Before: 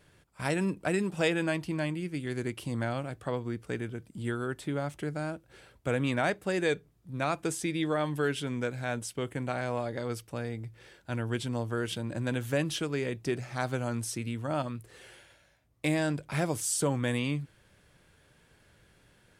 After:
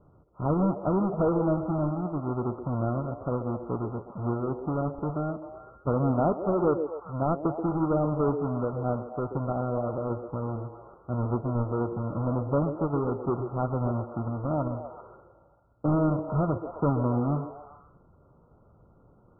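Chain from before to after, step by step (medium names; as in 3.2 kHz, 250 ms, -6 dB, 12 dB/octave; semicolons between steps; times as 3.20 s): square wave that keeps the level; Chebyshev low-pass 1.4 kHz, order 10; on a send: repeats whose band climbs or falls 130 ms, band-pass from 400 Hz, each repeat 0.7 oct, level -5.5 dB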